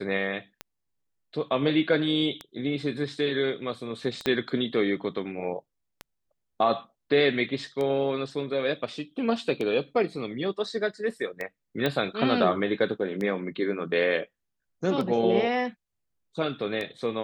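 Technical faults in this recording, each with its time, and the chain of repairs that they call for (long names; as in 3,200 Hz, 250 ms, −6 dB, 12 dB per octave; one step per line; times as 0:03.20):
scratch tick 33 1/3 rpm −19 dBFS
0:04.26: click −12 dBFS
0:11.86: click −13 dBFS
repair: click removal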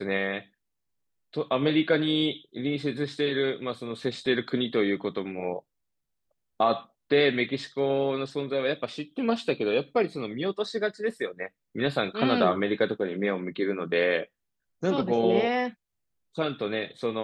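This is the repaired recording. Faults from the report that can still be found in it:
0:04.26: click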